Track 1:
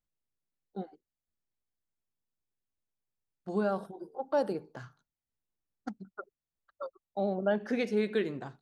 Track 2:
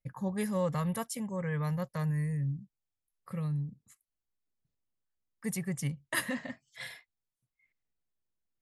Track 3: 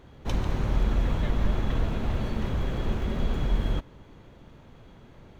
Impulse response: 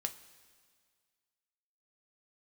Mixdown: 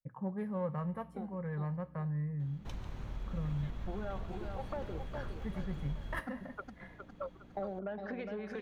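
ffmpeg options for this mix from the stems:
-filter_complex "[0:a]acompressor=threshold=-33dB:ratio=3,asoftclip=type=tanh:threshold=-27dB,aeval=exprs='val(0)+0.00178*(sin(2*PI*60*n/s)+sin(2*PI*2*60*n/s)/2+sin(2*PI*3*60*n/s)/3+sin(2*PI*4*60*n/s)/4+sin(2*PI*5*60*n/s)/5)':channel_layout=same,adelay=400,volume=3dB,asplit=2[link_01][link_02];[link_02]volume=-10.5dB[link_03];[1:a]adynamicsmooth=sensitivity=1:basefreq=1200,aexciter=amount=5.3:drive=6.6:freq=9300,volume=-3.5dB,asplit=2[link_04][link_05];[link_05]volume=-4.5dB[link_06];[2:a]acompressor=threshold=-34dB:ratio=2,adelay=2400,volume=-8.5dB[link_07];[link_01][link_04]amix=inputs=2:normalize=0,highpass=160,lowpass=2200,acompressor=threshold=-39dB:ratio=2,volume=0dB[link_08];[3:a]atrim=start_sample=2205[link_09];[link_06][link_09]afir=irnorm=-1:irlink=0[link_10];[link_03]aecho=0:1:410|820|1230|1640|2050|2460:1|0.41|0.168|0.0689|0.0283|0.0116[link_11];[link_07][link_08][link_10][link_11]amix=inputs=4:normalize=0,adynamicequalizer=threshold=0.00251:dfrequency=360:dqfactor=0.81:tfrequency=360:tqfactor=0.81:attack=5:release=100:ratio=0.375:range=2.5:mode=cutabove:tftype=bell"

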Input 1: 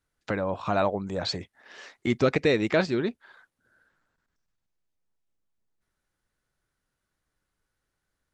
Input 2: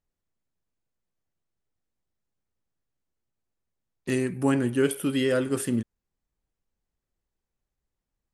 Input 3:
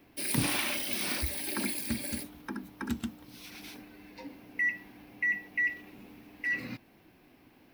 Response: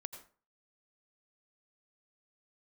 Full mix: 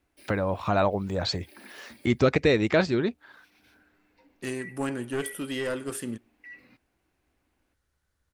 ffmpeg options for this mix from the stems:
-filter_complex "[0:a]equalizer=frequency=69:width=1.9:gain=12.5,volume=1dB,asplit=2[link_01][link_02];[1:a]lowshelf=frequency=310:gain=-8.5,aeval=exprs='clip(val(0),-1,0.0531)':channel_layout=same,adelay=350,volume=-3.5dB,asplit=2[link_03][link_04];[link_04]volume=-19.5dB[link_05];[2:a]bass=frequency=250:gain=-8,treble=frequency=4000:gain=-6,volume=-14.5dB[link_06];[link_02]apad=whole_len=341278[link_07];[link_06][link_07]sidechaincompress=threshold=-40dB:ratio=8:attack=9.1:release=118[link_08];[3:a]atrim=start_sample=2205[link_09];[link_05][link_09]afir=irnorm=-1:irlink=0[link_10];[link_01][link_03][link_08][link_10]amix=inputs=4:normalize=0"

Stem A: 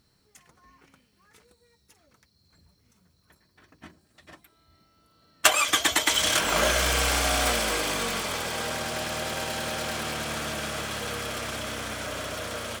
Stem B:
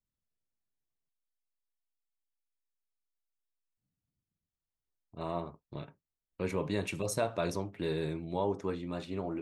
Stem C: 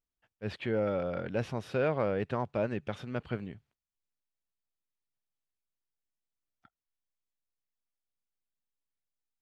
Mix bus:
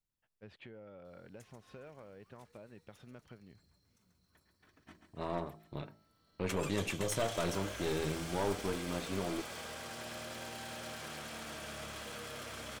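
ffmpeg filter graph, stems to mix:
ffmpeg -i stem1.wav -i stem2.wav -i stem3.wav -filter_complex "[0:a]acompressor=threshold=-32dB:ratio=10,adelay=1050,volume=-10dB,asplit=2[link_01][link_02];[link_02]volume=-8dB[link_03];[1:a]bandreject=frequency=53.74:width_type=h:width=4,bandreject=frequency=107.48:width_type=h:width=4,bandreject=frequency=161.22:width_type=h:width=4,bandreject=frequency=214.96:width_type=h:width=4,bandreject=frequency=268.7:width_type=h:width=4,bandreject=frequency=322.44:width_type=h:width=4,bandreject=frequency=376.18:width_type=h:width=4,bandreject=frequency=429.92:width_type=h:width=4,bandreject=frequency=483.66:width_type=h:width=4,bandreject=frequency=537.4:width_type=h:width=4,bandreject=frequency=591.14:width_type=h:width=4,bandreject=frequency=644.88:width_type=h:width=4,bandreject=frequency=698.62:width_type=h:width=4,bandreject=frequency=752.36:width_type=h:width=4,bandreject=frequency=806.1:width_type=h:width=4,bandreject=frequency=859.84:width_type=h:width=4,aeval=exprs='(tanh(28.2*val(0)+0.55)-tanh(0.55))/28.2':channel_layout=same,volume=2dB[link_04];[2:a]acompressor=threshold=-39dB:ratio=10,volume=-10dB[link_05];[link_03]aecho=0:1:137|274|411|548|685|822|959|1096:1|0.55|0.303|0.166|0.0915|0.0503|0.0277|0.0152[link_06];[link_01][link_04][link_05][link_06]amix=inputs=4:normalize=0" out.wav

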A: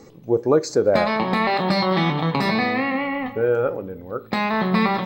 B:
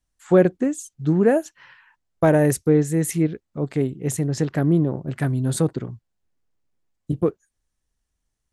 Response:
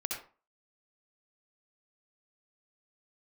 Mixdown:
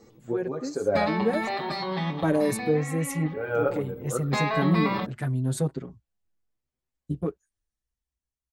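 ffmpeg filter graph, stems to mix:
-filter_complex "[0:a]volume=1.5dB,afade=type=out:start_time=1.13:duration=0.71:silence=0.316228,afade=type=in:start_time=3.24:duration=0.26:silence=0.398107,asplit=2[link_01][link_02];[link_02]volume=-16dB[link_03];[1:a]volume=-13dB,asplit=2[link_04][link_05];[link_05]apad=whole_len=223020[link_06];[link_01][link_06]sidechaincompress=threshold=-34dB:ratio=8:attack=47:release=704[link_07];[2:a]atrim=start_sample=2205[link_08];[link_03][link_08]afir=irnorm=-1:irlink=0[link_09];[link_07][link_04][link_09]amix=inputs=3:normalize=0,equalizer=frequency=61:width_type=o:width=0.39:gain=7.5,dynaudnorm=framelen=260:gausssize=9:maxgain=9.5dB,asplit=2[link_10][link_11];[link_11]adelay=6.4,afreqshift=0.78[link_12];[link_10][link_12]amix=inputs=2:normalize=1"

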